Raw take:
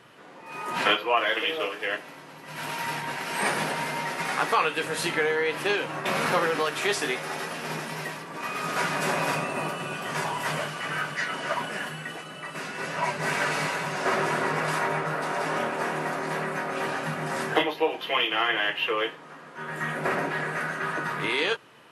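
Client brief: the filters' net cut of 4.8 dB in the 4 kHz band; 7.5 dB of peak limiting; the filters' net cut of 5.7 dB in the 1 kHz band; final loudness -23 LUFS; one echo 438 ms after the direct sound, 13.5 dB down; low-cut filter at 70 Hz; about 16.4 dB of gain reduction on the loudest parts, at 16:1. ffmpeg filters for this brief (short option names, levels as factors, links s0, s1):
-af "highpass=70,equalizer=f=1000:t=o:g=-7,equalizer=f=4000:t=o:g=-6.5,acompressor=threshold=0.0141:ratio=16,alimiter=level_in=2.51:limit=0.0631:level=0:latency=1,volume=0.398,aecho=1:1:438:0.211,volume=8.41"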